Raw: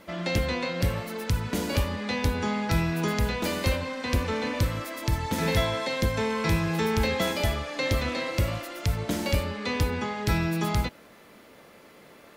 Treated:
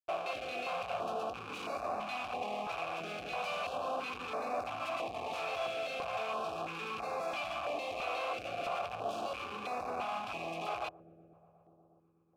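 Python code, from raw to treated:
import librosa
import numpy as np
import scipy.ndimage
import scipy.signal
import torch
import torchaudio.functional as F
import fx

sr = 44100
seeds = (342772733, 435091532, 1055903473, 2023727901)

p1 = fx.high_shelf(x, sr, hz=2000.0, db=11.5)
p2 = fx.notch(p1, sr, hz=930.0, q=10.0)
p3 = fx.over_compress(p2, sr, threshold_db=-25.0, ratio=-1.0)
p4 = p2 + F.gain(torch.from_numpy(p3), -2.0).numpy()
p5 = fx.schmitt(p4, sr, flips_db=-26.0)
p6 = fx.vowel_filter(p5, sr, vowel='a')
p7 = p6 + fx.echo_wet_lowpass(p6, sr, ms=121, feedback_pct=85, hz=430.0, wet_db=-14.0, dry=0)
p8 = fx.filter_held_notch(p7, sr, hz=3.0, low_hz=210.0, high_hz=3100.0)
y = F.gain(torch.from_numpy(p8), -1.5).numpy()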